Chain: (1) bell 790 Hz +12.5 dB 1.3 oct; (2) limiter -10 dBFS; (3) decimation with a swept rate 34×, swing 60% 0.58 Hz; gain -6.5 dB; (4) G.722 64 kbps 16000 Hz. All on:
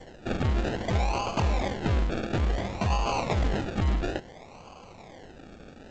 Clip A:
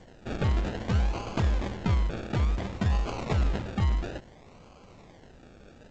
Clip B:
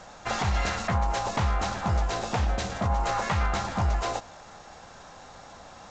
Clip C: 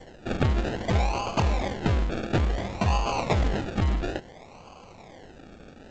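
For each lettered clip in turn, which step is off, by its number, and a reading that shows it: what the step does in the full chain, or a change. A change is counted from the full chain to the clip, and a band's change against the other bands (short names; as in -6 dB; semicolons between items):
1, 125 Hz band +5.0 dB; 3, 250 Hz band -5.5 dB; 2, crest factor change +5.0 dB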